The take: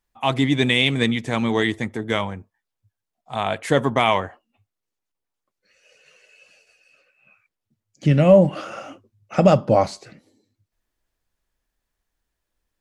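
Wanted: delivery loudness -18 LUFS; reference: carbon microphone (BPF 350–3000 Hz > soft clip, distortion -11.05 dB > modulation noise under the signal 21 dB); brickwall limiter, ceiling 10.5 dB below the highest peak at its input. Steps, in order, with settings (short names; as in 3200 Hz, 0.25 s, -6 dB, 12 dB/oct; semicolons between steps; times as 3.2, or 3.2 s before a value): limiter -13.5 dBFS; BPF 350–3000 Hz; soft clip -24 dBFS; modulation noise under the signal 21 dB; gain +14 dB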